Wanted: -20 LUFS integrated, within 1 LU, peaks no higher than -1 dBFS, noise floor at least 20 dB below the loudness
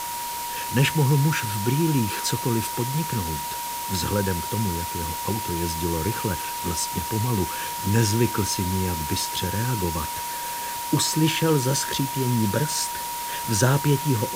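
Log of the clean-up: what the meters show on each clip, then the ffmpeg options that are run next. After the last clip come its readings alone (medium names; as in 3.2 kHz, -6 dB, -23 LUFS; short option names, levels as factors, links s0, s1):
steady tone 950 Hz; tone level -30 dBFS; noise floor -31 dBFS; noise floor target -44 dBFS; loudness -24.0 LUFS; peak level -6.5 dBFS; loudness target -20.0 LUFS
-> -af "bandreject=f=950:w=30"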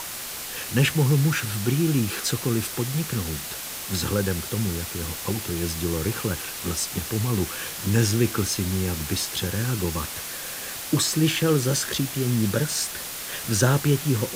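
steady tone not found; noise floor -34 dBFS; noise floor target -45 dBFS
-> -af "afftdn=nr=11:nf=-34"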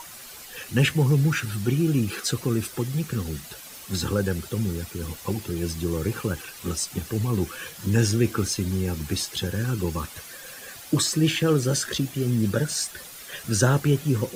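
noise floor -42 dBFS; noise floor target -46 dBFS
-> -af "afftdn=nr=6:nf=-42"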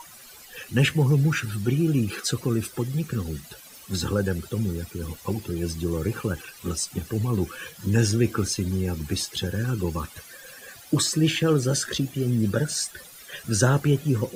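noise floor -47 dBFS; loudness -25.5 LUFS; peak level -7.0 dBFS; loudness target -20.0 LUFS
-> -af "volume=1.88"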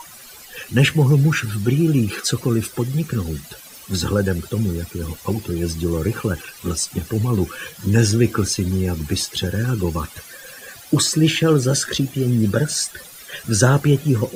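loudness -20.0 LUFS; peak level -1.5 dBFS; noise floor -41 dBFS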